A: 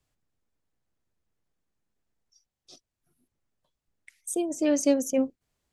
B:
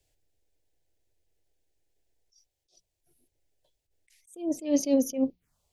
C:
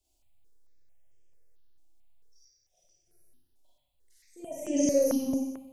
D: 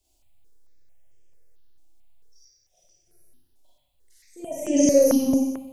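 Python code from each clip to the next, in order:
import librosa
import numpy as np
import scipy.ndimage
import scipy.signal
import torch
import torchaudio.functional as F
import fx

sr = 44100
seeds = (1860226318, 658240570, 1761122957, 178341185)

y1 = fx.env_phaser(x, sr, low_hz=200.0, high_hz=1500.0, full_db=-27.5)
y1 = fx.hum_notches(y1, sr, base_hz=60, count=3)
y1 = fx.attack_slew(y1, sr, db_per_s=170.0)
y1 = y1 * 10.0 ** (6.0 / 20.0)
y2 = fx.rev_schroeder(y1, sr, rt60_s=1.1, comb_ms=32, drr_db=-7.0)
y2 = fx.phaser_held(y2, sr, hz=4.5, low_hz=480.0, high_hz=4100.0)
y2 = y2 * 10.0 ** (-4.0 / 20.0)
y3 = fx.rider(y2, sr, range_db=3, speed_s=2.0)
y3 = y3 * 10.0 ** (8.0 / 20.0)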